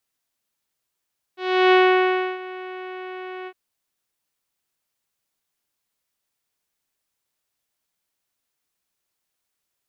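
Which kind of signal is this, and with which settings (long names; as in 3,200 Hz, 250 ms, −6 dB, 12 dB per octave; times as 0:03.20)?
subtractive voice saw F#4 24 dB per octave, low-pass 2,700 Hz, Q 1.2, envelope 0.5 octaves, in 0.58 s, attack 350 ms, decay 0.66 s, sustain −20 dB, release 0.06 s, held 2.10 s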